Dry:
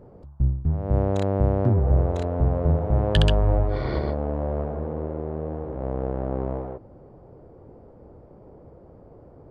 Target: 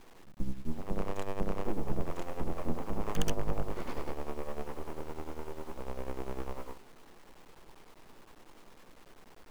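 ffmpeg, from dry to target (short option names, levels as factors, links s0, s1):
-filter_complex "[0:a]aeval=exprs='abs(val(0))':c=same,tremolo=f=10:d=0.73,equalizer=f=130:t=o:w=2.6:g=-6,asplit=2[s0][s1];[s1]asoftclip=type=tanh:threshold=0.0668,volume=0.282[s2];[s0][s2]amix=inputs=2:normalize=0,equalizer=f=100:t=o:w=0.67:g=-8,equalizer=f=630:t=o:w=0.67:g=-7,equalizer=f=1600:t=o:w=0.67:g=-6,equalizer=f=4000:t=o:w=0.67:g=-8,acrusher=bits=8:mix=0:aa=0.000001,volume=0.708"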